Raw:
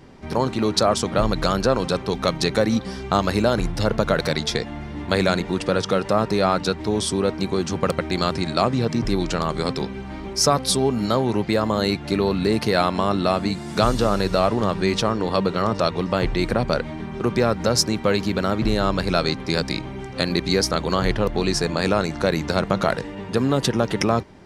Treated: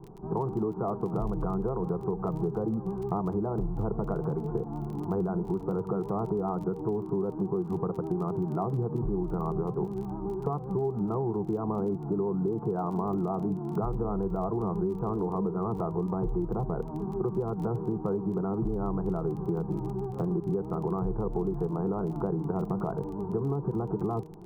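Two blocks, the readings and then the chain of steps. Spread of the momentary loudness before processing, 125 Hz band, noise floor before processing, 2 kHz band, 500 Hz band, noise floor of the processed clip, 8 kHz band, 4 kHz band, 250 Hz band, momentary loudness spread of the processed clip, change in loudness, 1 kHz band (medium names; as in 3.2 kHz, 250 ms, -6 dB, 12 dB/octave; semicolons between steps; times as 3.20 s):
5 LU, -5.5 dB, -34 dBFS, under -25 dB, -9.0 dB, -38 dBFS, under -35 dB, under -40 dB, -7.0 dB, 2 LU, -9.0 dB, -11.5 dB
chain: Bessel low-pass 720 Hz, order 8; vibrato 7.6 Hz 56 cents; in parallel at 0 dB: peak limiter -16 dBFS, peak gain reduction 9 dB; on the sum: static phaser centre 380 Hz, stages 8; crackle 23 per s -34 dBFS; de-hum 157 Hz, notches 5; compression 6:1, threshold -23 dBFS, peak gain reduction 9 dB; short-mantissa float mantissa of 8-bit; trim -3 dB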